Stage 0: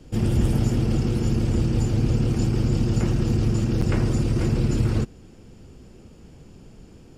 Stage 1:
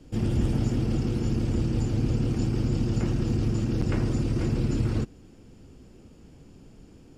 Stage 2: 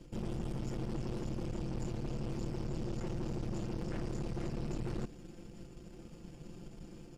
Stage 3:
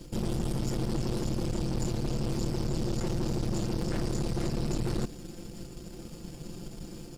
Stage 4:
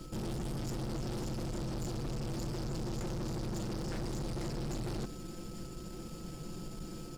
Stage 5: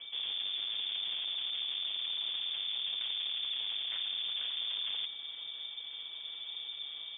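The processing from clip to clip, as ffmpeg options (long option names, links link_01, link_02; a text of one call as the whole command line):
ffmpeg -i in.wav -filter_complex "[0:a]acrossover=split=8100[link_01][link_02];[link_02]acompressor=threshold=-57dB:ratio=4:attack=1:release=60[link_03];[link_01][link_03]amix=inputs=2:normalize=0,equalizer=frequency=280:width_type=o:width=0.29:gain=5,volume=-4.5dB" out.wav
ffmpeg -i in.wav -af "aecho=1:1:5.8:0.7,areverse,acompressor=threshold=-31dB:ratio=6,areverse,aeval=exprs='(tanh(70.8*val(0)+0.75)-tanh(0.75))/70.8':channel_layout=same,volume=2.5dB" out.wav
ffmpeg -i in.wav -af "aexciter=amount=2.3:drive=4.7:freq=3700,volume=7.5dB" out.wav
ffmpeg -i in.wav -af "aeval=exprs='val(0)+0.00141*sin(2*PI*1300*n/s)':channel_layout=same,asoftclip=type=tanh:threshold=-33.5dB" out.wav
ffmpeg -i in.wav -af "lowpass=frequency=3100:width_type=q:width=0.5098,lowpass=frequency=3100:width_type=q:width=0.6013,lowpass=frequency=3100:width_type=q:width=0.9,lowpass=frequency=3100:width_type=q:width=2.563,afreqshift=-3600" out.wav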